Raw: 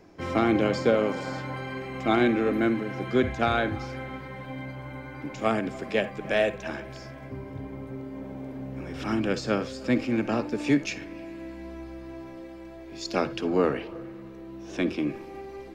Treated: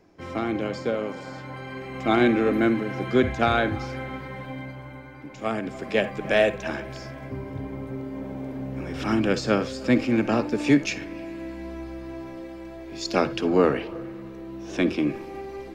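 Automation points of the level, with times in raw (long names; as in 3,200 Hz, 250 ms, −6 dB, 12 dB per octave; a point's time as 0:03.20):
0:01.34 −4.5 dB
0:02.26 +3 dB
0:04.39 +3 dB
0:05.27 −5 dB
0:06.09 +4 dB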